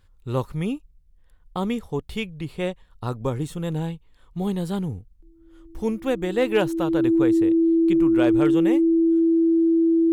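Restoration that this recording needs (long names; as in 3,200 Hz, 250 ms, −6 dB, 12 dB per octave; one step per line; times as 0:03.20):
clipped peaks rebuilt −10.5 dBFS
notch filter 330 Hz, Q 30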